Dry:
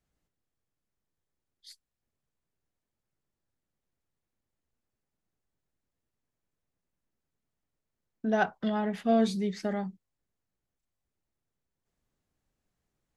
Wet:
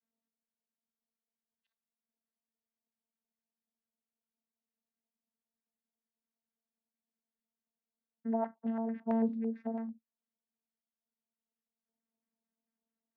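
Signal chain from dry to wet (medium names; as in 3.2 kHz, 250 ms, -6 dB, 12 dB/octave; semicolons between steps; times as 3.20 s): vocoder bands 16, saw 226 Hz; LFO low-pass square 4.5 Hz 810–1900 Hz; trim -6 dB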